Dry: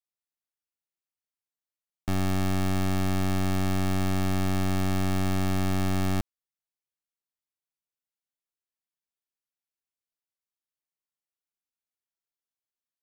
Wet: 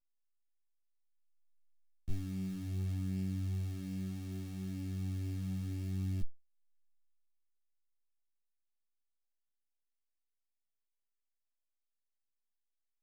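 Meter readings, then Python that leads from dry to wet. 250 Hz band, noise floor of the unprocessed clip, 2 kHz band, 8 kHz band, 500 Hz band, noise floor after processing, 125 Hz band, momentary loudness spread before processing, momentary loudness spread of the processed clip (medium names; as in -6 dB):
-12.5 dB, under -85 dBFS, -23.0 dB, -18.0 dB, -21.5 dB, -85 dBFS, -9.5 dB, 3 LU, 6 LU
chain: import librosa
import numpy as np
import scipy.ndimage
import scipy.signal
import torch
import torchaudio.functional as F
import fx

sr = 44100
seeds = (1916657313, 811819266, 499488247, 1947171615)

p1 = fx.tone_stack(x, sr, knobs='10-0-1')
p2 = np.clip(10.0 ** (35.5 / 20.0) * p1, -1.0, 1.0) / 10.0 ** (35.5 / 20.0)
p3 = p1 + (p2 * librosa.db_to_amplitude(-6.5))
p4 = fx.chorus_voices(p3, sr, voices=4, hz=0.43, base_ms=17, depth_ms=3.8, mix_pct=55)
y = p4 * librosa.db_to_amplitude(3.5)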